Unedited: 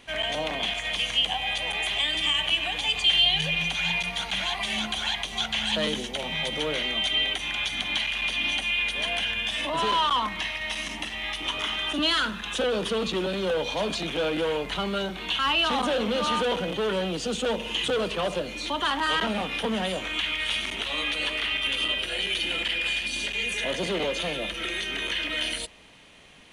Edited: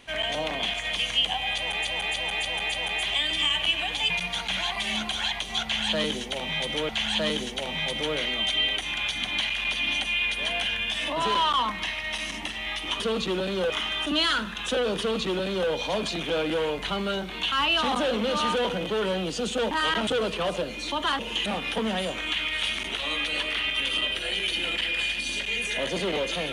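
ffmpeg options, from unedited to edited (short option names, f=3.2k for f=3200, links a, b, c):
-filter_complex "[0:a]asplit=13[a][b][c][d][e][f][g][h][i][j][k][l][m];[a]atrim=end=1.852[n];[b]atrim=start=1.558:end=1.852[o];[c]atrim=start=1.558:end=1.852[p];[d]atrim=start=1.558:end=1.852[q];[e]atrim=start=1.558:end=2.942[r];[f]atrim=start=3.928:end=6.722[s];[g]atrim=start=5.458:end=11.572[t];[h]atrim=start=12.858:end=13.562[u];[i]atrim=start=11.568:end=17.582[v];[j]atrim=start=18.968:end=19.332[w];[k]atrim=start=17.848:end=18.972[x];[l]atrim=start=17.578:end=17.852[y];[m]atrim=start=19.328[z];[n][o]acrossfade=d=0.004:c1=hsin:c2=hsin[aa];[aa][p]acrossfade=d=0.004:c1=hsin:c2=hsin[ab];[ab][q]acrossfade=d=0.004:c1=hsin:c2=hsin[ac];[ac][r]acrossfade=d=0.004:c1=hsin:c2=hsin[ad];[ad][s]acrossfade=d=0.004:c1=hsin:c2=hsin[ae];[ae][t]acrossfade=d=0.004:c1=hsin:c2=hsin[af];[af][u]acrossfade=d=0.004:c1=hsin:c2=hsin[ag];[ag][v]acrossfade=d=0.004:c1=hsin:c2=hsin[ah];[ah][w]acrossfade=d=0.004:c1=hsin:c2=hsin[ai];[ai][x]acrossfade=d=0.004:c1=hsin:c2=hsin[aj];[aj][y]acrossfade=d=0.004:c1=hsin:c2=hsin[ak];[ak][z]acrossfade=d=0.004:c1=hsin:c2=hsin"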